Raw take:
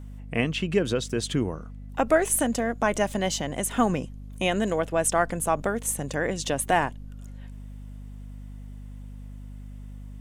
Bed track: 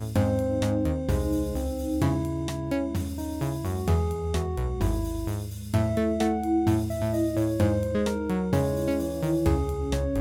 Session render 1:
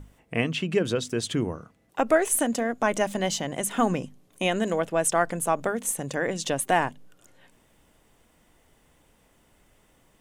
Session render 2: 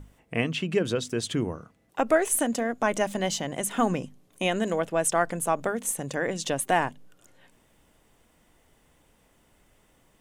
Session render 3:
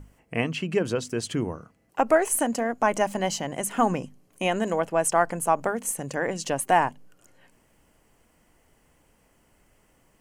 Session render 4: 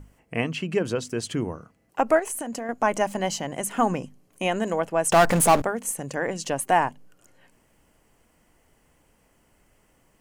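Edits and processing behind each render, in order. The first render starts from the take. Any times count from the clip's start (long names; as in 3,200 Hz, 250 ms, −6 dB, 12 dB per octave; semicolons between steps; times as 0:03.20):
mains-hum notches 50/100/150/200/250 Hz
level −1 dB
notch filter 3,600 Hz, Q 5.1; dynamic equaliser 890 Hz, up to +6 dB, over −39 dBFS, Q 2
0:02.19–0:02.69: downward compressor, threshold −28 dBFS; 0:05.12–0:05.62: power curve on the samples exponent 0.5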